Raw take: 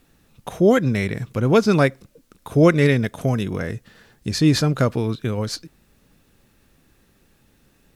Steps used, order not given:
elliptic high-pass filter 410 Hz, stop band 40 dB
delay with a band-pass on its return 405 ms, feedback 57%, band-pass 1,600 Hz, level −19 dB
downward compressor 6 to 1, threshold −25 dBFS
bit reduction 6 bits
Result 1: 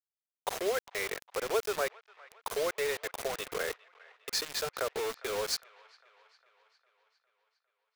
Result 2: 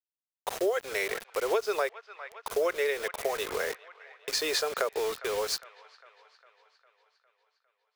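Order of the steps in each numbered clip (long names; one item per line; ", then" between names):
downward compressor, then elliptic high-pass filter, then bit reduction, then delay with a band-pass on its return
elliptic high-pass filter, then bit reduction, then delay with a band-pass on its return, then downward compressor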